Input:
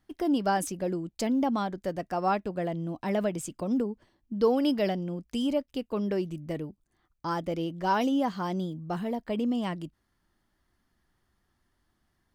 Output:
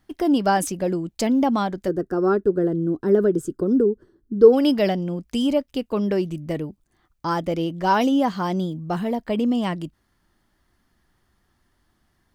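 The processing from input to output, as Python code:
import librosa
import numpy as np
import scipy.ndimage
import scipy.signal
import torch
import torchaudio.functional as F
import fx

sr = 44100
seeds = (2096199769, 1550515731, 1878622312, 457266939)

y = fx.curve_eq(x, sr, hz=(250.0, 400.0, 640.0, 920.0, 1500.0, 2300.0, 3400.0, 6800.0, 12000.0), db=(0, 12, -11, -12, 1, -23, -14, -10, -7), at=(1.87, 4.52), fade=0.02)
y = y * librosa.db_to_amplitude(7.0)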